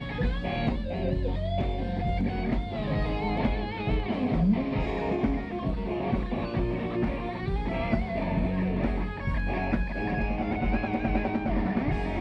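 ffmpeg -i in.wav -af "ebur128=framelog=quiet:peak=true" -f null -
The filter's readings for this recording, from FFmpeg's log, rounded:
Integrated loudness:
  I:         -29.2 LUFS
  Threshold: -39.2 LUFS
Loudness range:
  LRA:         1.4 LU
  Threshold: -49.2 LUFS
  LRA low:   -29.9 LUFS
  LRA high:  -28.5 LUFS
True peak:
  Peak:      -13.0 dBFS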